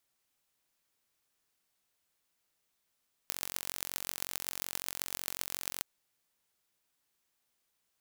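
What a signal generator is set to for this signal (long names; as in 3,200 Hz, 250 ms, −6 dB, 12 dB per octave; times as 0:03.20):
impulse train 45.4 per second, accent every 6, −5.5 dBFS 2.53 s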